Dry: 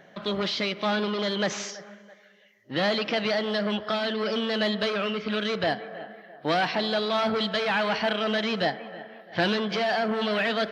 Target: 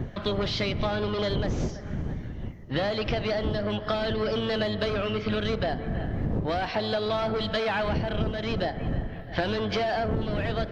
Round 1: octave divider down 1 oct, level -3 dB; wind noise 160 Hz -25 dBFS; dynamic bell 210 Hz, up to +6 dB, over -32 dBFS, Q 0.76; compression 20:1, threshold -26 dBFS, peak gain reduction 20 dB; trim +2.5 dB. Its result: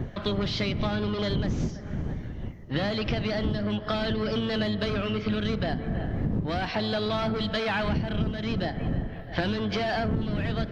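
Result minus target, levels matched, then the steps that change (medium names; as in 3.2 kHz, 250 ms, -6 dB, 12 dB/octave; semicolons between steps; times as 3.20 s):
500 Hz band -2.5 dB
change: dynamic bell 540 Hz, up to +6 dB, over -32 dBFS, Q 0.76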